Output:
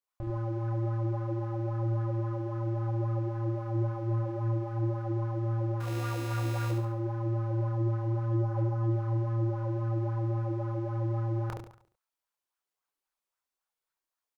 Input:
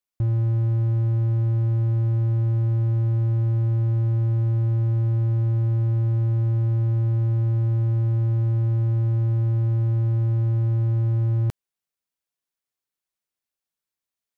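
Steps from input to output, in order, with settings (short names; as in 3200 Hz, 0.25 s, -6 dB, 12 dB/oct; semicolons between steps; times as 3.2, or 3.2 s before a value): graphic EQ 125/250/1000 Hz -11/-5/+6 dB; 5.8–6.71 sample-rate reducer 1300 Hz, jitter 0%; chorus voices 6, 0.97 Hz, delay 28 ms, depth 4.1 ms; feedback echo 70 ms, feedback 44%, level -4 dB; LFO bell 3.7 Hz 280–1500 Hz +9 dB; gain -1.5 dB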